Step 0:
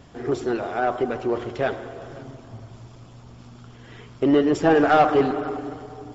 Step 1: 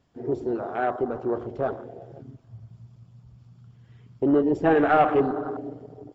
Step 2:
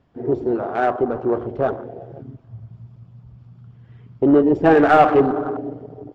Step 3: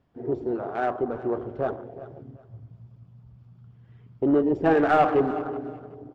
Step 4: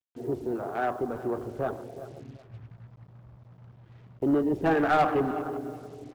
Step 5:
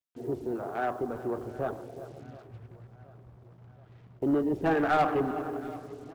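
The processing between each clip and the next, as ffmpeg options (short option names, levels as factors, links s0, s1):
-af "afwtdn=0.0355,equalizer=f=4600:w=7.3:g=3,volume=0.75"
-af "adynamicsmooth=sensitivity=4:basefreq=3300,volume=2.11"
-af "aecho=1:1:374|748:0.141|0.0353,volume=0.447"
-filter_complex "[0:a]acrossover=split=360|590[s0][s1][s2];[s1]acompressor=threshold=0.0126:ratio=6[s3];[s0][s3][s2]amix=inputs=3:normalize=0,acrusher=bits=8:mix=0:aa=0.5,asoftclip=type=hard:threshold=0.188,volume=0.891"
-af "aecho=1:1:724|1448|2172|2896:0.1|0.053|0.0281|0.0149,volume=0.794"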